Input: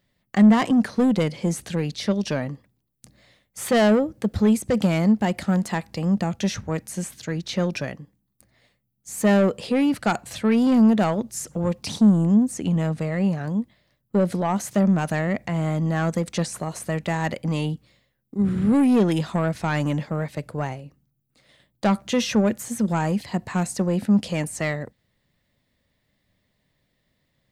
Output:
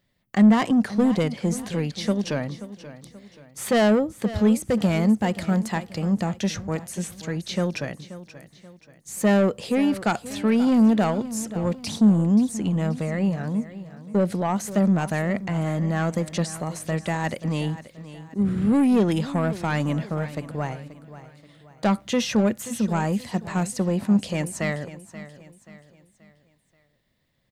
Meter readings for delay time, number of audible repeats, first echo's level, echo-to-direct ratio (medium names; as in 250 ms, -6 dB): 531 ms, 3, -15.0 dB, -14.0 dB